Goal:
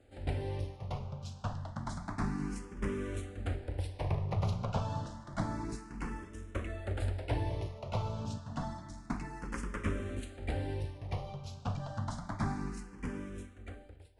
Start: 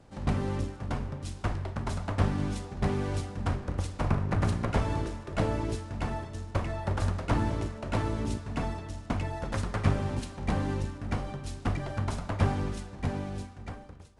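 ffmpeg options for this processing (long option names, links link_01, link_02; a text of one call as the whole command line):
ffmpeg -i in.wav -filter_complex "[0:a]asplit=2[link_01][link_02];[link_02]afreqshift=0.29[link_03];[link_01][link_03]amix=inputs=2:normalize=1,volume=-3.5dB" out.wav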